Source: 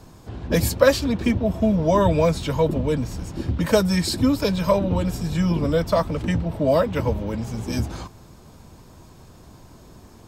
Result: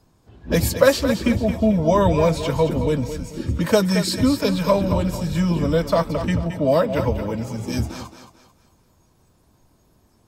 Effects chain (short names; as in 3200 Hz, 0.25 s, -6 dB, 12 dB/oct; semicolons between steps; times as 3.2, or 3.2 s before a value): spectral noise reduction 14 dB; thinning echo 0.221 s, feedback 37%, high-pass 220 Hz, level -9 dB; gain +1 dB